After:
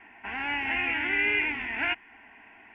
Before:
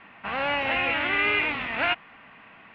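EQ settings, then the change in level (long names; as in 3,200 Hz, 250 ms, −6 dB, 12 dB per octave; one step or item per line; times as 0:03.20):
phaser with its sweep stopped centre 810 Hz, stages 8
dynamic equaliser 680 Hz, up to −7 dB, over −45 dBFS, Q 1.5
0.0 dB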